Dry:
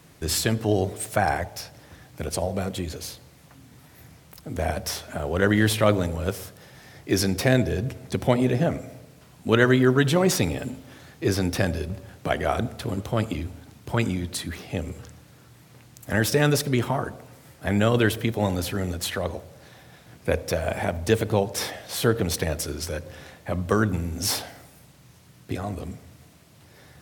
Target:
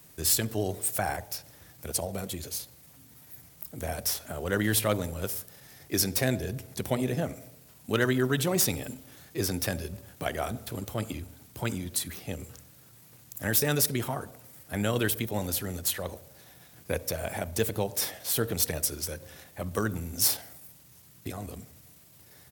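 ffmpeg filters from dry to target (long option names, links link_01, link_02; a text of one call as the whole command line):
ffmpeg -i in.wav -af "atempo=1.2,aemphasis=mode=production:type=50fm,volume=6.5dB,asoftclip=hard,volume=-6.5dB,volume=-7dB" out.wav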